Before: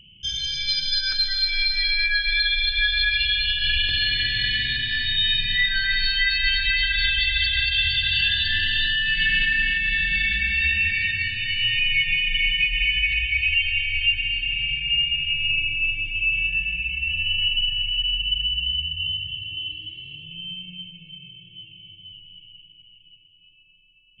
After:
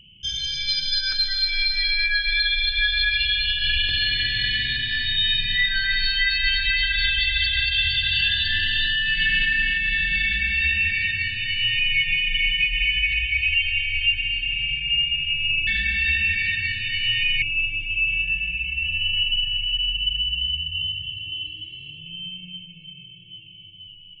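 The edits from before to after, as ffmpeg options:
-filter_complex "[0:a]asplit=3[a][b][c];[a]atrim=end=15.672[d];[b]atrim=start=10.228:end=11.982[e];[c]atrim=start=15.668[f];[d][e]acrossfade=d=0.004:c1=hsin:c2=hsin[g];[g][f]acrossfade=d=0.004:c1=hsin:c2=hsin"

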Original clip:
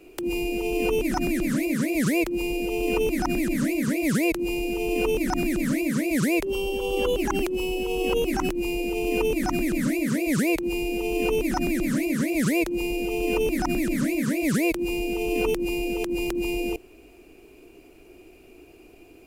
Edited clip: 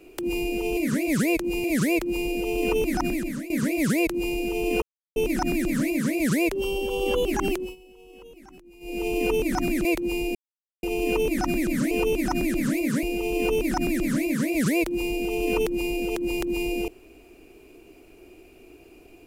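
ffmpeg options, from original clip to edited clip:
-filter_complex "[0:a]asplit=11[a][b][c][d][e][f][g][h][i][j][k];[a]atrim=end=0.772[l];[b]atrim=start=12.038:end=12.912[m];[c]atrim=start=1.888:end=3.75,asetpts=PTS-STARTPTS,afade=t=out:st=1.382:d=0.48:silence=0.211349[n];[d]atrim=start=3.75:end=5.07,asetpts=PTS-STARTPTS,afade=t=in:d=0.004:c=hsin:silence=0.211349,afade=t=out:st=1.316:d=0.004:c=hsin,apad=pad_dur=0.34[o];[e]atrim=start=5.07:end=7.67,asetpts=PTS-STARTPTS,afade=t=in:d=0.004:c=hsin,afade=t=out:st=2.37:d=0.23:silence=0.0707946[p];[f]atrim=start=7.67:end=8.71,asetpts=PTS-STARTPTS,volume=-23dB[q];[g]atrim=start=8.71:end=9.762,asetpts=PTS-STARTPTS,afade=t=in:d=0.23:silence=0.0707946[r];[h]atrim=start=10.458:end=10.96,asetpts=PTS-STARTPTS,afade=t=out:st=0.498:d=0.004:c=hsin,apad=pad_dur=0.48[s];[i]atrim=start=10.96:end=12.042,asetpts=PTS-STARTPTS,afade=t=in:d=0.004:c=hsin[t];[j]atrim=start=0.768:end=1.892[u];[k]atrim=start=12.908[v];[l][m]acrossfade=d=0.004:c1=hsin:c2=hsin[w];[n][o][p][q][r]concat=n=5:v=0:a=1[x];[w][x]acrossfade=d=0.004:c1=hsin:c2=hsin[y];[s][t]concat=n=2:v=0:a=1[z];[y][z]acrossfade=d=0.004:c1=hsin:c2=hsin[aa];[aa][u]acrossfade=d=0.004:c1=hsin:c2=hsin[ab];[ab][v]acrossfade=d=0.004:c1=hsin:c2=hsin"

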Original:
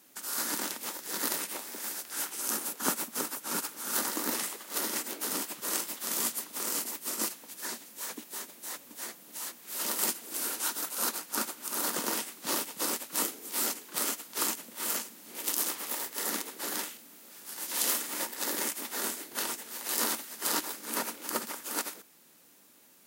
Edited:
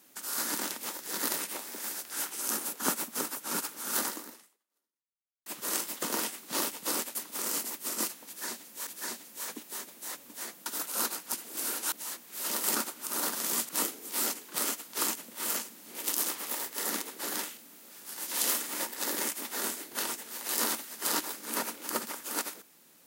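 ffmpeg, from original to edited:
-filter_complex "[0:a]asplit=11[a][b][c][d][e][f][g][h][i][j][k];[a]atrim=end=5.46,asetpts=PTS-STARTPTS,afade=t=out:st=4.07:d=1.39:c=exp[l];[b]atrim=start=5.46:end=6.022,asetpts=PTS-STARTPTS,afade=t=in:d=0.004:c=hsin[m];[c]atrim=start=11.958:end=13.092[n];[d]atrim=start=6.358:end=8.082[o];[e]atrim=start=7.478:end=9.272[p];[f]atrim=start=10.688:end=11.362[q];[g]atrim=start=10.098:end=10.692[r];[h]atrim=start=9.268:end=10.102[s];[i]atrim=start=11.358:end=11.962[t];[j]atrim=start=6.018:end=6.362[u];[k]atrim=start=13.088[v];[l][m]concat=n=2:v=0:a=1[w];[w][n]acrossfade=d=0.004:c1=hsin:c2=hsin[x];[x][o]acrossfade=d=0.004:c1=hsin:c2=hsin[y];[y][p]acrossfade=d=0.004:c1=hsin:c2=hsin[z];[z][q]acrossfade=d=0.004:c1=hsin:c2=hsin[aa];[aa][r]acrossfade=d=0.004:c1=hsin:c2=hsin[ab];[ab][s]acrossfade=d=0.004:c1=hsin:c2=hsin[ac];[ac][t]acrossfade=d=0.004:c1=hsin:c2=hsin[ad];[ad][u]acrossfade=d=0.004:c1=hsin:c2=hsin[ae];[ae][v]acrossfade=d=0.004:c1=hsin:c2=hsin"

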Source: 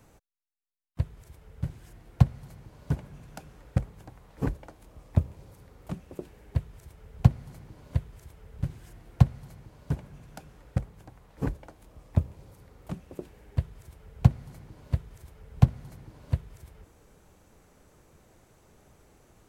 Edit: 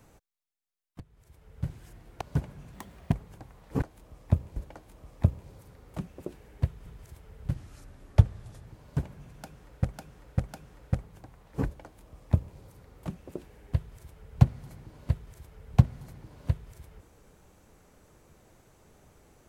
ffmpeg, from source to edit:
-filter_complex "[0:a]asplit=12[a][b][c][d][e][f][g][h][i][j][k][l];[a]atrim=end=1,asetpts=PTS-STARTPTS,afade=t=out:st=0.996:d=0.004:c=hsin:silence=0.0668344[m];[b]atrim=start=1:end=2.212,asetpts=PTS-STARTPTS,afade=t=in:d=0.7:silence=0.0668344[n];[c]atrim=start=2.758:end=3.294[o];[d]atrim=start=3.29:end=3.8,asetpts=PTS-STARTPTS,asetrate=57330,aresample=44100[p];[e]atrim=start=3.796:end=4.492[q];[f]atrim=start=11.668:end=12.412[r];[g]atrim=start=4.488:end=6.792[s];[h]atrim=start=7.998:end=8.684[t];[i]atrim=start=8.68:end=9.6,asetpts=PTS-STARTPTS,asetrate=36162,aresample=44100,atrim=end_sample=49478,asetpts=PTS-STARTPTS[u];[j]atrim=start=9.596:end=10.872[v];[k]atrim=start=10.318:end=10.872[w];[l]atrim=start=10.318[x];[m][n]concat=n=2:v=0:a=1[y];[y][o]acrossfade=d=0.004:c1=hsin:c2=hsin[z];[z][p]acrossfade=d=0.004:c1=hsin:c2=hsin[aa];[aa][q]acrossfade=d=0.004:c1=hsin:c2=hsin[ab];[ab][r]acrossfade=d=0.004:c1=hsin:c2=hsin[ac];[ac][s]acrossfade=d=0.004:c1=hsin:c2=hsin[ad];[ad][t]acrossfade=d=0.004:c1=hsin:c2=hsin[ae];[ae][u]acrossfade=d=0.004:c1=hsin:c2=hsin[af];[af][v]acrossfade=d=0.004:c1=hsin:c2=hsin[ag];[ag][w]acrossfade=d=0.004:c1=hsin:c2=hsin[ah];[ah][x]acrossfade=d=0.004:c1=hsin:c2=hsin"

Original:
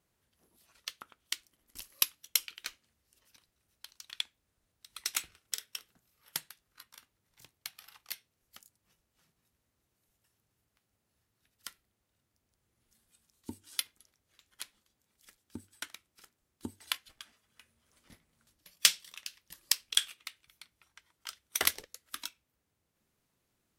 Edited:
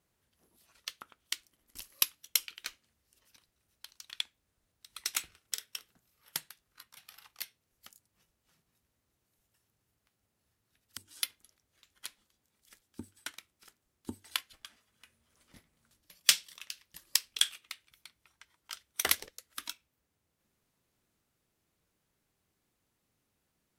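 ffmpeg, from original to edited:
-filter_complex "[0:a]asplit=3[a][b][c];[a]atrim=end=6.972[d];[b]atrim=start=7.668:end=11.672[e];[c]atrim=start=13.528[f];[d][e]acrossfade=d=0.004:c1=hsin:c2=hsin[g];[g][f]acrossfade=d=0.004:c1=hsin:c2=hsin"

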